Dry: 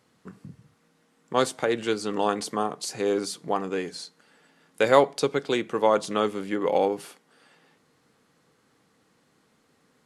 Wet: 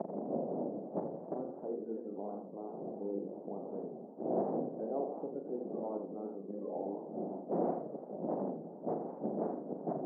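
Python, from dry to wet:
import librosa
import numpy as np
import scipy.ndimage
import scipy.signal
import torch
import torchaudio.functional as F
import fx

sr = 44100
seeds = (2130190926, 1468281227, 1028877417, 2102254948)

p1 = fx.spec_quant(x, sr, step_db=30)
p2 = fx.dmg_wind(p1, sr, seeds[0], corner_hz=560.0, level_db=-29.0)
p3 = fx.leveller(p2, sr, passes=2)
p4 = fx.chorus_voices(p3, sr, voices=2, hz=0.43, base_ms=16, depth_ms=3.4, mix_pct=25)
p5 = fx.gate_flip(p4, sr, shuts_db=-20.0, range_db=-31)
p6 = (np.mod(10.0 ** (31.5 / 20.0) * p5 + 1.0, 2.0) - 1.0) / 10.0 ** (31.5 / 20.0)
p7 = scipy.signal.sosfilt(scipy.signal.ellip(3, 1.0, 60, [190.0, 710.0], 'bandpass', fs=sr, output='sos'), p6)
p8 = p7 + fx.room_flutter(p7, sr, wall_m=6.9, rt60_s=0.38, dry=0)
p9 = fx.echo_warbled(p8, sr, ms=84, feedback_pct=59, rate_hz=2.8, cents=217, wet_db=-8)
y = p9 * 10.0 ** (11.5 / 20.0)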